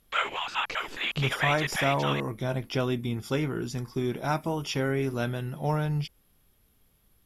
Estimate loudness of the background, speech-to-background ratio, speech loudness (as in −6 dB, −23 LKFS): −30.0 LKFS, 0.0 dB, −30.0 LKFS